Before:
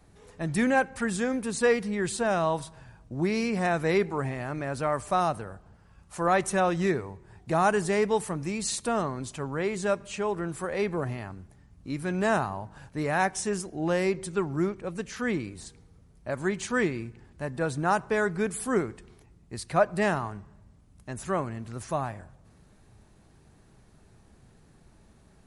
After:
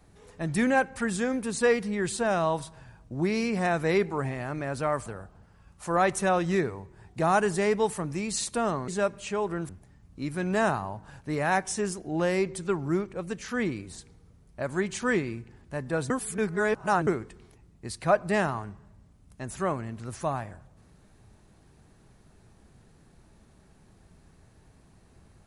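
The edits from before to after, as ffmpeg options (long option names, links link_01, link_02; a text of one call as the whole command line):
ffmpeg -i in.wav -filter_complex "[0:a]asplit=6[link_01][link_02][link_03][link_04][link_05][link_06];[link_01]atrim=end=5.062[link_07];[link_02]atrim=start=5.368:end=9.192[link_08];[link_03]atrim=start=9.748:end=10.562[link_09];[link_04]atrim=start=11.368:end=17.782[link_10];[link_05]atrim=start=17.778:end=18.752,asetpts=PTS-STARTPTS,areverse[link_11];[link_06]atrim=start=18.748[link_12];[link_07][link_08]acrossfade=duration=0.004:curve1=hsin:curve2=hsin[link_13];[link_13][link_09]acrossfade=duration=0.004:curve1=hsin:curve2=hsin[link_14];[link_14][link_10]acrossfade=duration=0.004:curve1=hsin:curve2=hsin[link_15];[link_15][link_11]acrossfade=duration=0.004:curve1=hsin:curve2=hsin[link_16];[link_16][link_12]acrossfade=duration=0.004:curve1=hsin:curve2=hsin" out.wav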